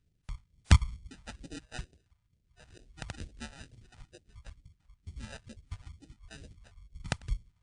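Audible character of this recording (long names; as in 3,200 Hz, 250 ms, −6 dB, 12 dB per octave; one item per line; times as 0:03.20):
aliases and images of a low sample rate 1,100 Hz, jitter 0%
phaser sweep stages 2, 2.2 Hz, lowest notch 310–1,100 Hz
WMA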